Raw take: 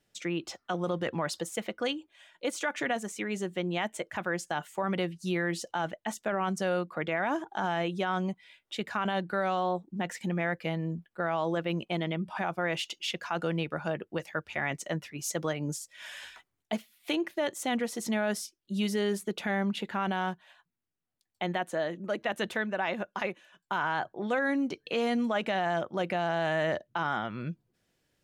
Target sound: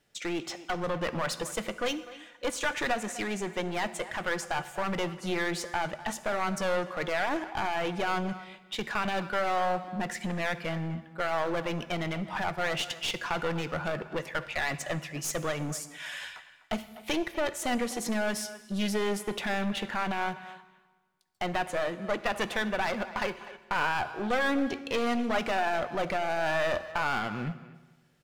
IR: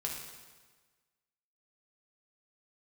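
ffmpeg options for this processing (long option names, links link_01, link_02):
-filter_complex "[0:a]equalizer=frequency=1400:width_type=o:width=2.8:gain=3.5,aeval=exprs='clip(val(0),-1,0.0211)':channel_layout=same,asplit=2[link_01][link_02];[link_02]adelay=250,highpass=300,lowpass=3400,asoftclip=type=hard:threshold=-25.5dB,volume=-15dB[link_03];[link_01][link_03]amix=inputs=2:normalize=0,asplit=2[link_04][link_05];[1:a]atrim=start_sample=2205[link_06];[link_05][link_06]afir=irnorm=-1:irlink=0,volume=-10dB[link_07];[link_04][link_07]amix=inputs=2:normalize=0"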